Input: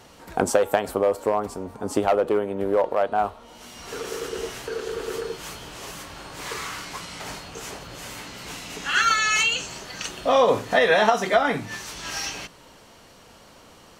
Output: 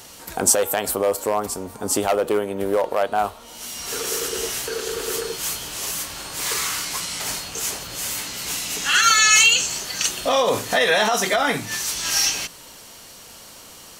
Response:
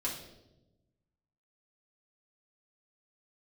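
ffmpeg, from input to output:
-af "alimiter=limit=-12.5dB:level=0:latency=1:release=38,crystalizer=i=4:c=0,volume=1dB"

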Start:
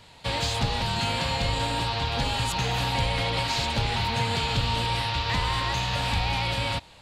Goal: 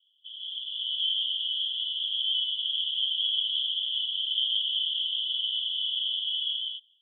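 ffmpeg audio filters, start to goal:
-af "asuperpass=centerf=3200:order=8:qfactor=7.3,dynaudnorm=f=140:g=9:m=16dB,volume=-5.5dB"

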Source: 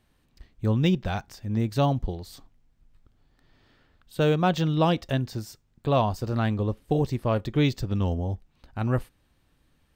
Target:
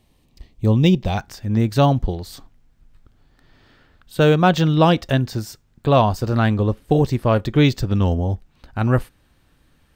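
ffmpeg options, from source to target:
-af "asetnsamples=n=441:p=0,asendcmd='1.17 equalizer g 2.5',equalizer=f=1.5k:t=o:w=0.44:g=-15,volume=7.5dB"

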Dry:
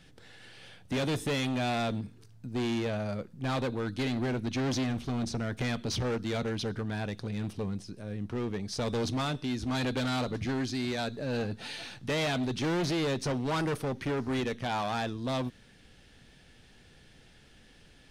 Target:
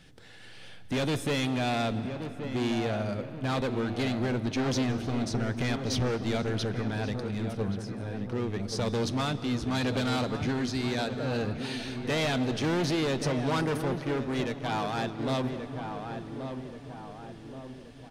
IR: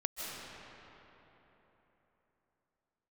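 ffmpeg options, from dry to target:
-filter_complex "[0:a]asplit=2[a][b];[b]adelay=1128,lowpass=f=1.5k:p=1,volume=-7.5dB,asplit=2[c][d];[d]adelay=1128,lowpass=f=1.5k:p=1,volume=0.52,asplit=2[e][f];[f]adelay=1128,lowpass=f=1.5k:p=1,volume=0.52,asplit=2[g][h];[h]adelay=1128,lowpass=f=1.5k:p=1,volume=0.52,asplit=2[i][j];[j]adelay=1128,lowpass=f=1.5k:p=1,volume=0.52,asplit=2[k][l];[l]adelay=1128,lowpass=f=1.5k:p=1,volume=0.52[m];[a][c][e][g][i][k][m]amix=inputs=7:normalize=0,asplit=3[n][o][p];[n]afade=t=out:st=14:d=0.02[q];[o]agate=range=-33dB:threshold=-28dB:ratio=3:detection=peak,afade=t=in:st=14:d=0.02,afade=t=out:st=15.18:d=0.02[r];[p]afade=t=in:st=15.18:d=0.02[s];[q][r][s]amix=inputs=3:normalize=0,asplit=2[t][u];[1:a]atrim=start_sample=2205[v];[u][v]afir=irnorm=-1:irlink=0,volume=-13.5dB[w];[t][w]amix=inputs=2:normalize=0"

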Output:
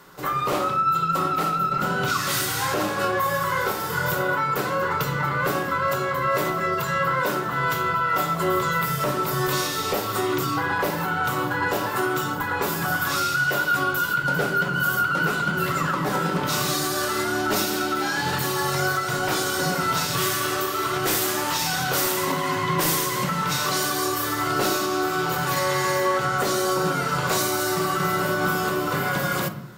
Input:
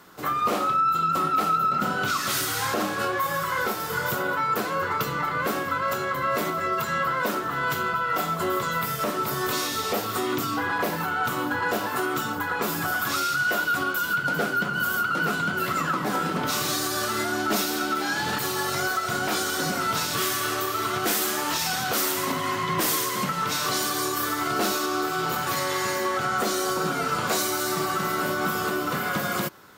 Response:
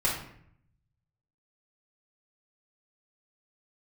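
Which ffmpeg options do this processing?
-filter_complex "[0:a]asplit=2[a][b];[1:a]atrim=start_sample=2205,lowshelf=f=420:g=7[c];[b][c]afir=irnorm=-1:irlink=0,volume=-16dB[d];[a][d]amix=inputs=2:normalize=0"

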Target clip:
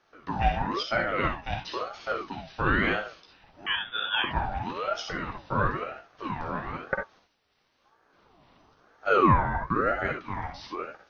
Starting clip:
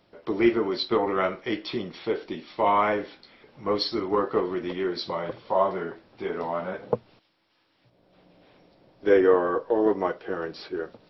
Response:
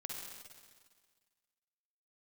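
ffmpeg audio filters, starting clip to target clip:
-filter_complex "[0:a]asettb=1/sr,asplit=3[a][b][c];[a]atrim=end=3.664[d];[b]atrim=start=3.66:end=4.24,asetpts=PTS-STARTPTS,afade=t=in:d=0.004:c=qsin,afade=t=out:st=0.576:d=0.004:c=qsin,lowpass=f=2.4k:t=q:w=0.5098,lowpass=f=2.4k:t=q:w=0.6013,lowpass=f=2.4k:t=q:w=0.9,lowpass=f=2.4k:t=q:w=2.563,afreqshift=-2800[e];[c]atrim=start=4.236[f];[d][e]acrossfade=d=0.004:c1=hsin:c2=qsin[g];[g][f]acrossfade=d=0.004:c1=qsin:c2=hsin[h];[1:a]atrim=start_sample=2205,atrim=end_sample=3969[i];[h][i]afir=irnorm=-1:irlink=0,aeval=exprs='val(0)*sin(2*PI*720*n/s+720*0.45/1*sin(2*PI*1*n/s))':c=same,volume=3.5dB"

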